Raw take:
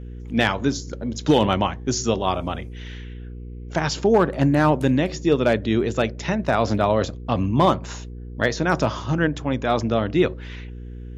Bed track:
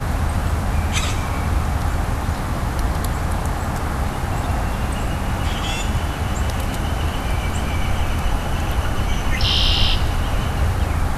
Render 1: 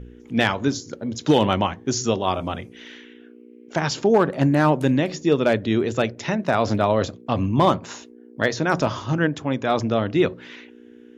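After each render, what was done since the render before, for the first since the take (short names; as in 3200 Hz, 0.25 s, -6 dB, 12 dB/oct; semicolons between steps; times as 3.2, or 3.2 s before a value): de-hum 60 Hz, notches 3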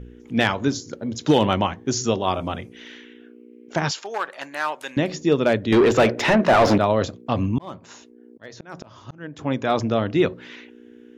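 3.91–4.97 HPF 1100 Hz; 5.72–6.78 overdrive pedal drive 26 dB, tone 1600 Hz, clips at -6.5 dBFS; 7.34–9.39 auto swell 0.796 s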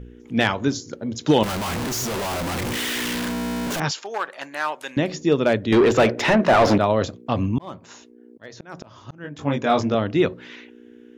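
1.43–3.8 infinite clipping; 9.22–9.95 doubler 21 ms -3 dB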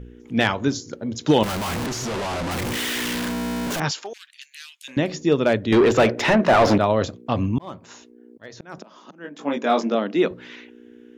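1.86–2.51 air absorption 57 m; 4.13–4.88 inverse Chebyshev high-pass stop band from 620 Hz, stop band 70 dB; 8.78–10.31 elliptic high-pass 190 Hz, stop band 50 dB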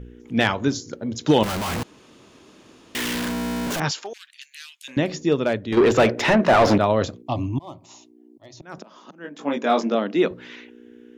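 1.83–2.95 room tone; 5.15–5.77 fade out, to -7.5 dB; 7.22–8.63 fixed phaser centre 310 Hz, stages 8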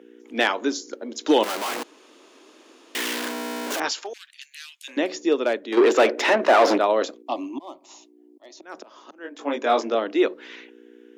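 steep high-pass 280 Hz 36 dB/oct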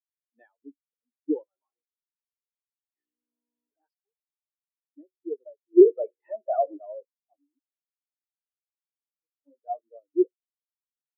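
spectral expander 4:1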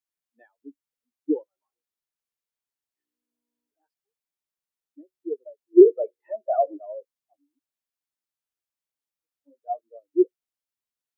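gain +2.5 dB; limiter -3 dBFS, peak gain reduction 1 dB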